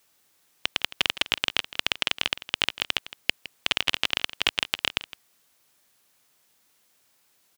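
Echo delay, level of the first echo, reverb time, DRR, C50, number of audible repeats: 0.162 s, -16.0 dB, none, none, none, 1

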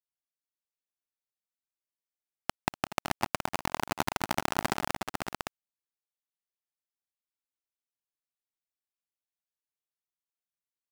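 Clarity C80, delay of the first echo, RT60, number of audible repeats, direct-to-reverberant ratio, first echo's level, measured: none, 0.243 s, none, 4, none, -16.0 dB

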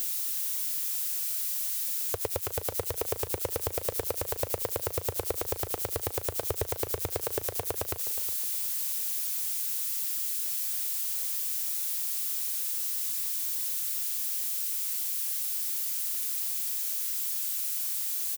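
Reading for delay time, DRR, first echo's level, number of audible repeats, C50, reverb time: 0.364 s, none, -14.0 dB, 3, none, none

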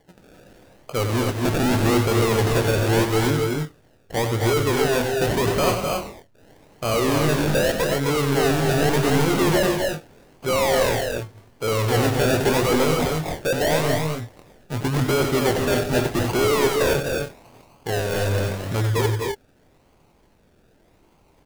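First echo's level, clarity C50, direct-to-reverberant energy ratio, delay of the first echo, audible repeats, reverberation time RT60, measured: -8.0 dB, none, none, 93 ms, 3, none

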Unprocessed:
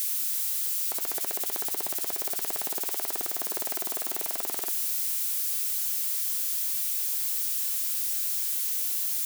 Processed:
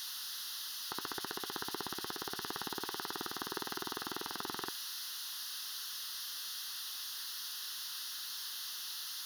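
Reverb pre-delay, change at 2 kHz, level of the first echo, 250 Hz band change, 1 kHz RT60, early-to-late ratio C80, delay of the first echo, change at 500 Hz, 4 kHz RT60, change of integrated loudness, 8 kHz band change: none, -1.5 dB, none, +0.5 dB, none, none, none, -5.5 dB, none, -13.5 dB, -13.5 dB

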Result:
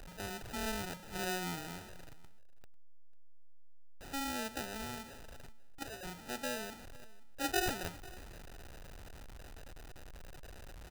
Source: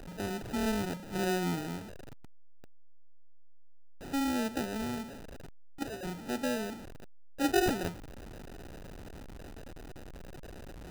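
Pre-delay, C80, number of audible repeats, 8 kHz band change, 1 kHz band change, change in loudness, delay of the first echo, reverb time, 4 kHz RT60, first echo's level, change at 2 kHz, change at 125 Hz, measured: none, none, 1, -0.5 dB, -4.0 dB, -6.0 dB, 0.495 s, none, none, -21.0 dB, -2.0 dB, -7.5 dB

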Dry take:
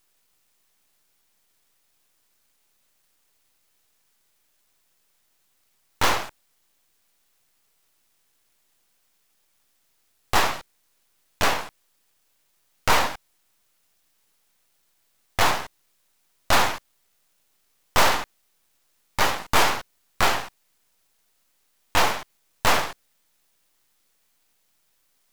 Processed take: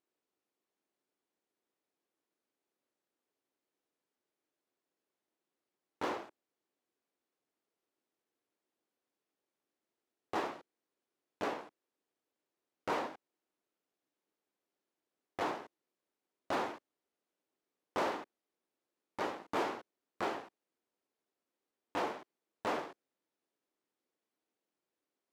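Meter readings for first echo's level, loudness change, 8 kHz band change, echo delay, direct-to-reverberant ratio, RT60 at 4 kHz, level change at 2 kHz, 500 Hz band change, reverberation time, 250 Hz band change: none, -16.0 dB, -27.0 dB, none, none, none, -19.0 dB, -10.0 dB, none, -8.0 dB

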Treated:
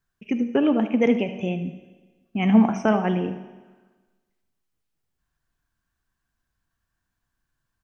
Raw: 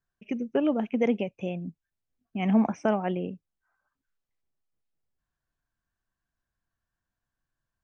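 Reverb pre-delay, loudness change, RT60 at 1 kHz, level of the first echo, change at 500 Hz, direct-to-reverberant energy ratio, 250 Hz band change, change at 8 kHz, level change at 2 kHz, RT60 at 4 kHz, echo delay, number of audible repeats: 10 ms, +6.0 dB, 1.3 s, -13.5 dB, +4.0 dB, 8.0 dB, +6.5 dB, n/a, +7.0 dB, 1.3 s, 76 ms, 1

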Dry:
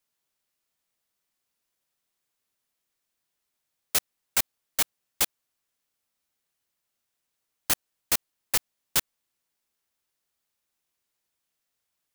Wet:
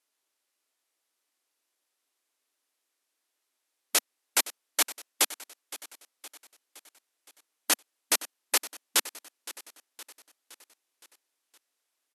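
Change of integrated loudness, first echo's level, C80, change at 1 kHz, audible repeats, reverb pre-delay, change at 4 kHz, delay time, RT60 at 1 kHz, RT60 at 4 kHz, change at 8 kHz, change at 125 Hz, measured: -0.5 dB, -16.5 dB, none, +2.0 dB, 4, none, +2.0 dB, 0.516 s, none, none, +2.0 dB, under -30 dB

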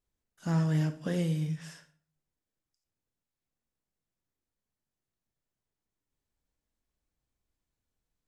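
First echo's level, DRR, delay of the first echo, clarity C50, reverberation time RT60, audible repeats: none, 9.5 dB, none, 13.5 dB, 0.50 s, none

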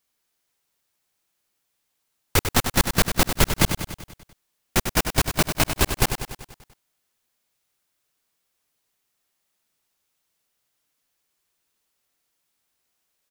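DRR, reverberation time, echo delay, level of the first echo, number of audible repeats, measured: none, none, 97 ms, -8.0 dB, 6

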